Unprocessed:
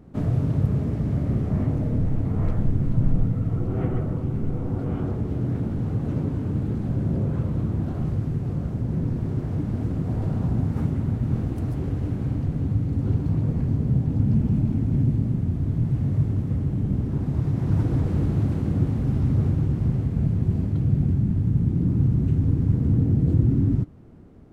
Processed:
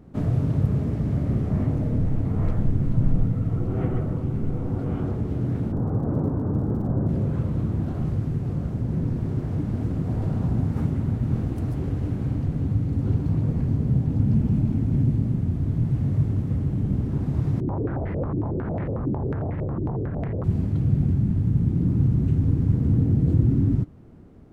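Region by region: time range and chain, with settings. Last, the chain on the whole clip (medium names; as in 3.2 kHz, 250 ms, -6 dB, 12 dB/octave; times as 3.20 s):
5.71–7.07 s: low-pass 1.4 kHz 24 dB/octave + peaking EQ 740 Hz +6 dB 2.5 oct + crackle 65 per s -46 dBFS
17.60–20.44 s: hard clipper -26 dBFS + step-sequenced low-pass 11 Hz 320–2000 Hz
whole clip: none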